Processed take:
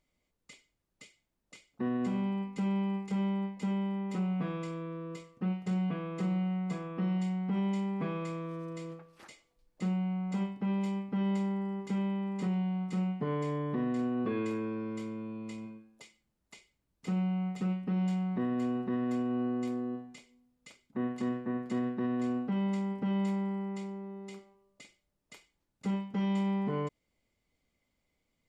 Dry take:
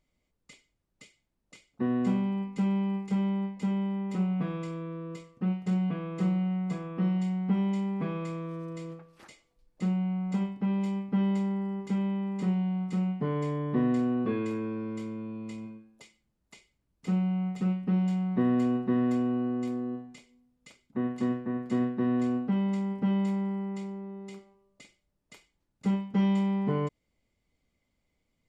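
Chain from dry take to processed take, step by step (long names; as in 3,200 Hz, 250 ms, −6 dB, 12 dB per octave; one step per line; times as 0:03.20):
low-shelf EQ 250 Hz −4.5 dB
brickwall limiter −24.5 dBFS, peak gain reduction 6 dB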